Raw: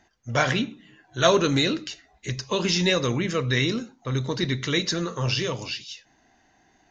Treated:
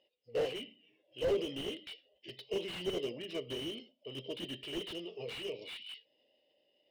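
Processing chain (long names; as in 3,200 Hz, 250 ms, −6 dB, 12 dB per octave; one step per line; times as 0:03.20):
pair of resonant band-passes 1,500 Hz, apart 2.6 octaves
formants moved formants −4 semitones
slew-rate limiting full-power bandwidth 21 Hz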